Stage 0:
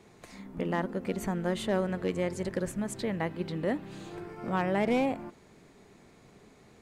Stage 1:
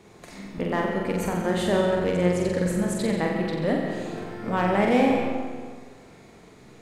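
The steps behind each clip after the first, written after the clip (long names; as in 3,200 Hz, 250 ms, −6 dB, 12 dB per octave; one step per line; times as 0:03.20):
flutter between parallel walls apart 7.7 metres, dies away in 0.72 s
on a send at −5 dB: convolution reverb RT60 1.6 s, pre-delay 90 ms
on the sum: level +4 dB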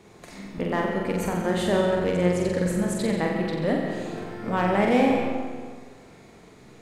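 no processing that can be heard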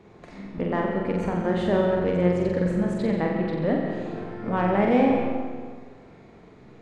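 head-to-tape spacing loss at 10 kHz 23 dB
level +1.5 dB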